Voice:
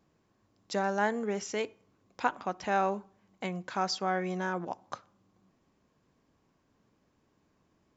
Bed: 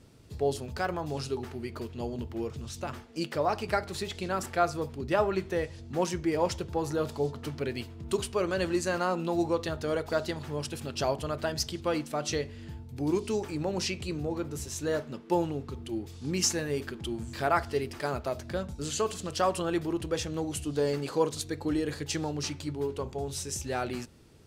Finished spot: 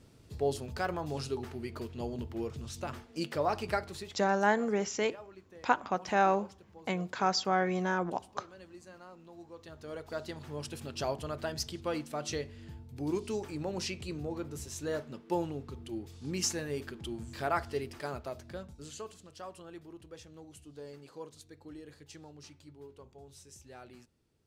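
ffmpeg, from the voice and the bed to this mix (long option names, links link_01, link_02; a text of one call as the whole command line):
ffmpeg -i stem1.wav -i stem2.wav -filter_complex "[0:a]adelay=3450,volume=2dB[link_01];[1:a]volume=15.5dB,afade=type=out:start_time=3.68:duration=0.62:silence=0.0944061,afade=type=in:start_time=9.5:duration=1.22:silence=0.125893,afade=type=out:start_time=17.76:duration=1.52:silence=0.211349[link_02];[link_01][link_02]amix=inputs=2:normalize=0" out.wav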